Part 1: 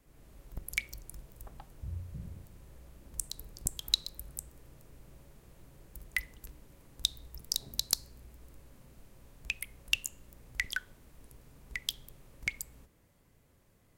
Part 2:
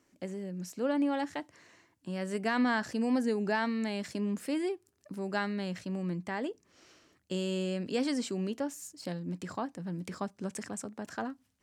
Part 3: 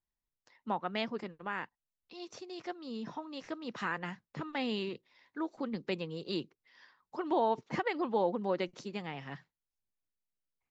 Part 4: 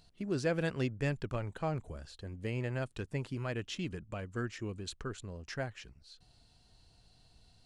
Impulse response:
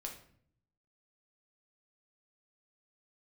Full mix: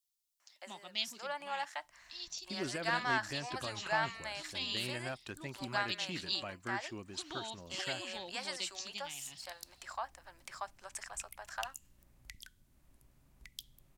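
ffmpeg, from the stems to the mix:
-filter_complex "[0:a]acrossover=split=310|3000[s0][s1][s2];[s1]acompressor=threshold=0.00355:ratio=6[s3];[s0][s3][s2]amix=inputs=3:normalize=0,adelay=1700,volume=0.299[s4];[1:a]highpass=f=700:w=0.5412,highpass=f=700:w=1.3066,adelay=400,volume=0.944[s5];[2:a]aexciter=amount=14.6:drive=5.8:freq=2600,volume=0.15,asplit=2[s6][s7];[3:a]highpass=f=420:p=1,alimiter=level_in=1.68:limit=0.0631:level=0:latency=1:release=113,volume=0.596,adelay=2300,volume=1.12[s8];[s7]apad=whole_len=691432[s9];[s4][s9]sidechaincompress=threshold=0.00178:ratio=8:attack=5.9:release=918[s10];[s10][s5][s6][s8]amix=inputs=4:normalize=0,equalizer=f=460:w=7.2:g=-13.5"

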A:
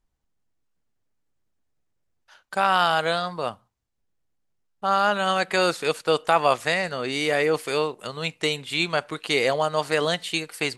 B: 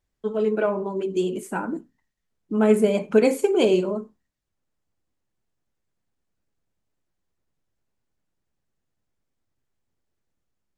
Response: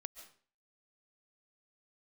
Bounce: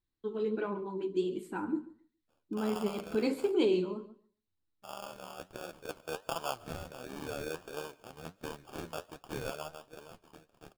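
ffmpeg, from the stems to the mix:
-filter_complex "[0:a]tremolo=f=75:d=0.824,acrusher=samples=22:mix=1:aa=0.000001,volume=0.299,afade=t=in:st=5.67:d=0.36:silence=0.446684,afade=t=out:st=9.48:d=0.36:silence=0.266073,asplit=3[s0][s1][s2];[s1]volume=0.376[s3];[1:a]equalizer=f=100:t=o:w=0.33:g=10,equalizer=f=315:t=o:w=0.33:g=10,equalizer=f=630:t=o:w=0.33:g=-11,equalizer=f=1000:t=o:w=0.33:g=3,equalizer=f=4000:t=o:w=0.33:g=11,equalizer=f=6300:t=o:w=0.33:g=-9,equalizer=f=10000:t=o:w=0.33:g=-9,volume=0.447,asplit=2[s4][s5];[s5]volume=0.141[s6];[s2]apad=whole_len=475247[s7];[s4][s7]sidechaincompress=threshold=0.00891:ratio=8:attack=16:release=148[s8];[2:a]atrim=start_sample=2205[s9];[s3][s9]afir=irnorm=-1:irlink=0[s10];[s6]aecho=0:1:139|278|417:1|0.16|0.0256[s11];[s0][s8][s10][s11]amix=inputs=4:normalize=0,flanger=delay=4.7:depth=9:regen=62:speed=1.4:shape=triangular"

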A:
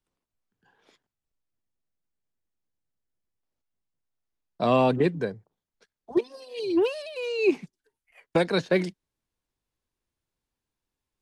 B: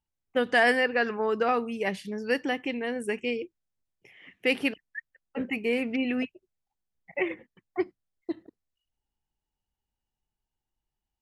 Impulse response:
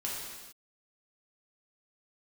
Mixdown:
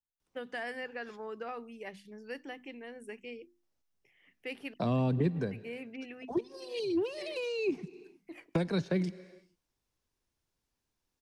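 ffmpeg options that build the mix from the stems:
-filter_complex "[0:a]equalizer=f=5600:t=o:w=0.43:g=4.5,adelay=200,volume=1.06,asplit=2[s0][s1];[s1]volume=0.0668[s2];[1:a]bandreject=f=50:t=h:w=6,bandreject=f=100:t=h:w=6,bandreject=f=150:t=h:w=6,bandreject=f=200:t=h:w=6,bandreject=f=250:t=h:w=6,bandreject=f=300:t=h:w=6,bandreject=f=350:t=h:w=6,volume=0.188[s3];[2:a]atrim=start_sample=2205[s4];[s2][s4]afir=irnorm=-1:irlink=0[s5];[s0][s3][s5]amix=inputs=3:normalize=0,acrossover=split=230[s6][s7];[s7]acompressor=threshold=0.02:ratio=6[s8];[s6][s8]amix=inputs=2:normalize=0"

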